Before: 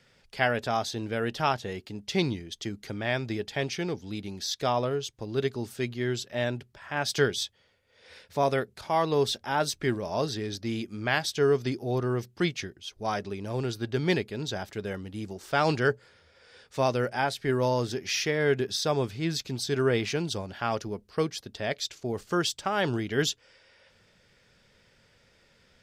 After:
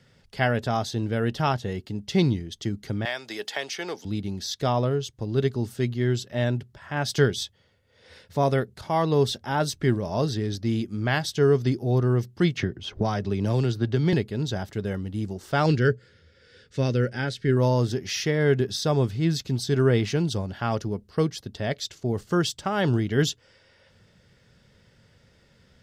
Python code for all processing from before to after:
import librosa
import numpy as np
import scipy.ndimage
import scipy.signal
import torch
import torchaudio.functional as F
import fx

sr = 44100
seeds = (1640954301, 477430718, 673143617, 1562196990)

y = fx.chain(x, sr, fx.highpass(hz=670.0, slope=12),
    fx.high_shelf(hz=4700.0, db=6.5),
    fx.band_squash(depth_pct=100), at=(3.05, 4.05))
y = fx.chain(y, sr, fx.peak_eq(hz=11000.0, db=-7.0, octaves=1.1),
    fx.band_squash(depth_pct=100), at=(12.57, 14.13))
y = fx.chain(y, sr, fx.lowpass(hz=7400.0, slope=12),
    fx.band_shelf(hz=860.0, db=-12.0, octaves=1.1), at=(15.66, 17.57))
y = fx.peak_eq(y, sr, hz=110.0, db=9.5, octaves=2.8)
y = fx.notch(y, sr, hz=2400.0, q=12.0)